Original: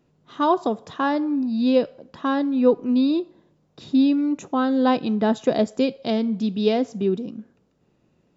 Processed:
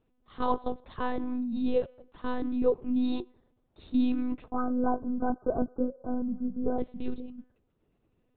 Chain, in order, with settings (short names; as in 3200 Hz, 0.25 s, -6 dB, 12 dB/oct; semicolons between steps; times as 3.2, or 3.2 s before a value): 4.5–6.8 brick-wall FIR low-pass 1600 Hz; monotone LPC vocoder at 8 kHz 250 Hz; gain -8 dB